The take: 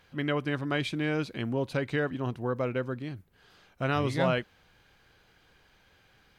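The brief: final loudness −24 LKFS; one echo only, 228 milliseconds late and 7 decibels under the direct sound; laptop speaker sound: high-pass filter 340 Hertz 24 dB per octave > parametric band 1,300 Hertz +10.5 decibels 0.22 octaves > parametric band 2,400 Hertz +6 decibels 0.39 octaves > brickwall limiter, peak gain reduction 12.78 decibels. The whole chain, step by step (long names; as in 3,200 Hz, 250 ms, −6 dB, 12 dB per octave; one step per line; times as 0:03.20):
high-pass filter 340 Hz 24 dB per octave
parametric band 1,300 Hz +10.5 dB 0.22 octaves
parametric band 2,400 Hz +6 dB 0.39 octaves
single-tap delay 228 ms −7 dB
level +12.5 dB
brickwall limiter −14 dBFS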